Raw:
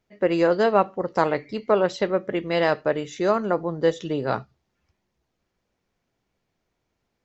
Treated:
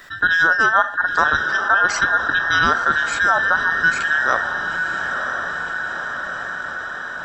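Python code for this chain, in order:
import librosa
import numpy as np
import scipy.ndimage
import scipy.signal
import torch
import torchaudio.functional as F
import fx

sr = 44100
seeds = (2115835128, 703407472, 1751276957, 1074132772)

y = fx.band_invert(x, sr, width_hz=2000)
y = fx.echo_diffused(y, sr, ms=971, feedback_pct=52, wet_db=-12.5)
y = fx.env_flatten(y, sr, amount_pct=50)
y = y * 10.0 ** (2.0 / 20.0)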